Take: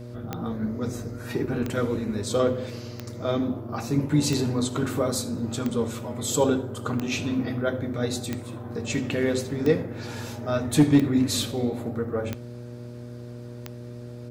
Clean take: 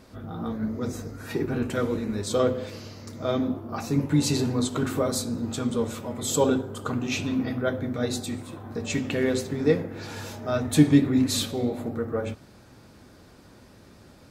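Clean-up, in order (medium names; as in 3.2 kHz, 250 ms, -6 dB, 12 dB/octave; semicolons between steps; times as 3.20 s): clip repair -10 dBFS; de-click; de-hum 120.5 Hz, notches 5; inverse comb 79 ms -20.5 dB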